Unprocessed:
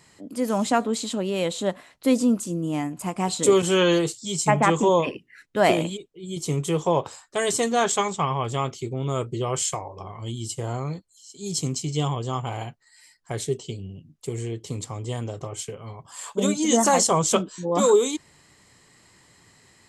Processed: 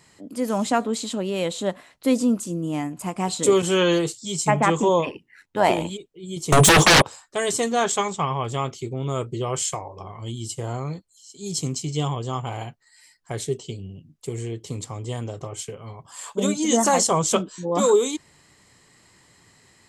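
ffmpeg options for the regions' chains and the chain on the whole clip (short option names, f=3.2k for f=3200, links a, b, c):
-filter_complex "[0:a]asettb=1/sr,asplit=3[a][b][c];[a]atrim=end=5.054[d];[b]atrim=start=5.05:end=5.9,asetpts=PTS-STARTPTS,afade=t=in:d=0.004:c=qsin,afade=t=out:st=0.846:d=0.004:c=qsin,equalizer=f=890:w=5.2:g=12.5,tremolo=f=92:d=0.462[e];[c]atrim=start=5.896[f];[d][e]acrossfade=d=0.004:c1=hsin:c2=qsin[g];[g][f]acrossfade=d=0.004:c1=qsin:c2=hsin,asettb=1/sr,asplit=3[h][i][j];[h]atrim=end=6.524[k];[i]atrim=start=6.52:end=7.02,asetpts=PTS-STARTPTS,afade=t=in:d=0.004:c=qsin,afade=t=out:st=0.496:d=0.004:c=qsin,aeval=exprs='val(0)+0.00251*sin(2*PI*9400*n/s)':c=same,agate=range=-33dB:threshold=-33dB:ratio=3:release=100:detection=peak,aeval=exprs='0.335*sin(PI/2*8.91*val(0)/0.335)':c=same[l];[j]atrim=start=7.016[m];[k][l]acrossfade=d=0.004:c1=hsin:c2=qsin[n];[n][m]acrossfade=d=0.004:c1=qsin:c2=hsin"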